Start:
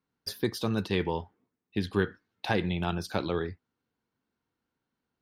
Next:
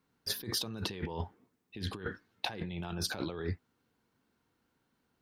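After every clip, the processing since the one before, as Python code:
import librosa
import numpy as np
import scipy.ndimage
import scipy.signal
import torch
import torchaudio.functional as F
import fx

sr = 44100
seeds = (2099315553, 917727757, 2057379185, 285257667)

y = fx.over_compress(x, sr, threshold_db=-38.0, ratio=-1.0)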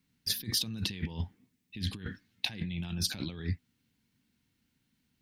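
y = fx.band_shelf(x, sr, hz=720.0, db=-14.0, octaves=2.4)
y = F.gain(torch.from_numpy(y), 4.0).numpy()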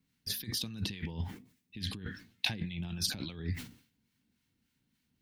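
y = fx.harmonic_tremolo(x, sr, hz=3.5, depth_pct=50, crossover_hz=840.0)
y = fx.sustainer(y, sr, db_per_s=120.0)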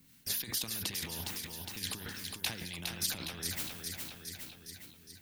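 y = fx.high_shelf(x, sr, hz=7100.0, db=12.0)
y = fx.echo_feedback(y, sr, ms=411, feedback_pct=45, wet_db=-8.5)
y = fx.spectral_comp(y, sr, ratio=2.0)
y = F.gain(torch.from_numpy(y), -6.0).numpy()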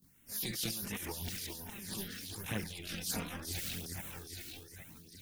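y = fx.transient(x, sr, attack_db=-9, sustain_db=11)
y = fx.filter_lfo_notch(y, sr, shape='sine', hz=1.3, low_hz=890.0, high_hz=4800.0, q=0.75)
y = fx.chorus_voices(y, sr, voices=2, hz=0.39, base_ms=21, depth_ms=3.0, mix_pct=70)
y = F.gain(torch.from_numpy(y), 1.0).numpy()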